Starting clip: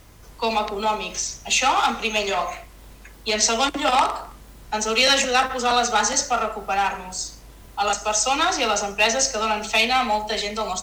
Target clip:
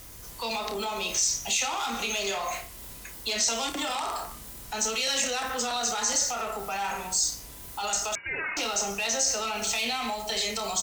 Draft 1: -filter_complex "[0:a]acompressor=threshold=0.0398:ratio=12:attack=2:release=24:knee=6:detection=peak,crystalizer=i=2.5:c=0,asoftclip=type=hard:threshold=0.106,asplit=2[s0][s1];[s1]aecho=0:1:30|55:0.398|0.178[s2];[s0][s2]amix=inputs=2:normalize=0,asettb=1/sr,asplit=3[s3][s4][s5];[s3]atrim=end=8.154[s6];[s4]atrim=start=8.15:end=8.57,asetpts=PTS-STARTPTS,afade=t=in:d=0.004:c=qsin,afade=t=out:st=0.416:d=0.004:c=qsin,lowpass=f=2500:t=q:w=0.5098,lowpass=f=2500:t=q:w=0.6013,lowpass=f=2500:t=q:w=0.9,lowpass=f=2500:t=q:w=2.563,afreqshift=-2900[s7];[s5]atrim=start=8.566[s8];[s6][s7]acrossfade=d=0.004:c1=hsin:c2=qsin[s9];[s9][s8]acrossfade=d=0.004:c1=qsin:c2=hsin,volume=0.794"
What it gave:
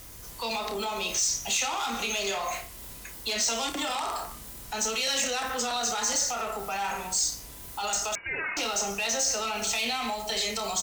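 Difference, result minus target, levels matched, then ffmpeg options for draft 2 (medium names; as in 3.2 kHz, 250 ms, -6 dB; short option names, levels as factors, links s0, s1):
hard clipper: distortion +21 dB
-filter_complex "[0:a]acompressor=threshold=0.0398:ratio=12:attack=2:release=24:knee=6:detection=peak,crystalizer=i=2.5:c=0,asoftclip=type=hard:threshold=0.224,asplit=2[s0][s1];[s1]aecho=0:1:30|55:0.398|0.178[s2];[s0][s2]amix=inputs=2:normalize=0,asettb=1/sr,asplit=3[s3][s4][s5];[s3]atrim=end=8.154[s6];[s4]atrim=start=8.15:end=8.57,asetpts=PTS-STARTPTS,afade=t=in:d=0.004:c=qsin,afade=t=out:st=0.416:d=0.004:c=qsin,lowpass=f=2500:t=q:w=0.5098,lowpass=f=2500:t=q:w=0.6013,lowpass=f=2500:t=q:w=0.9,lowpass=f=2500:t=q:w=2.563,afreqshift=-2900[s7];[s5]atrim=start=8.566[s8];[s6][s7]acrossfade=d=0.004:c1=hsin:c2=qsin[s9];[s9][s8]acrossfade=d=0.004:c1=qsin:c2=hsin,volume=0.794"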